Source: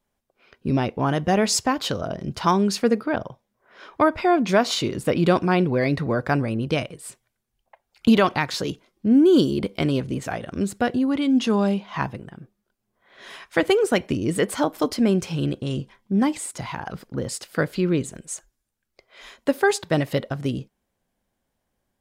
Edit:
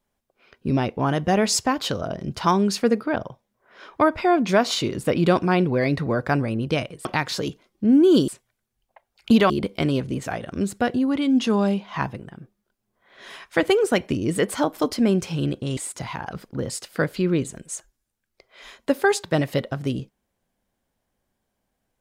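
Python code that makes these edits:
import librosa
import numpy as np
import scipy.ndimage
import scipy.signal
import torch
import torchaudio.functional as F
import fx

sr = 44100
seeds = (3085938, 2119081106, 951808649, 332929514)

y = fx.edit(x, sr, fx.move(start_s=7.05, length_s=1.22, to_s=9.5),
    fx.cut(start_s=15.77, length_s=0.59), tone=tone)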